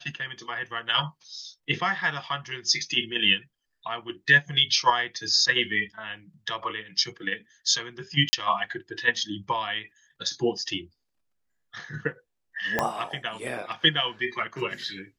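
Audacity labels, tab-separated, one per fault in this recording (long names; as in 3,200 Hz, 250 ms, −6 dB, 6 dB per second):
8.290000	8.330000	drop-out 40 ms
12.790000	12.790000	click −9 dBFS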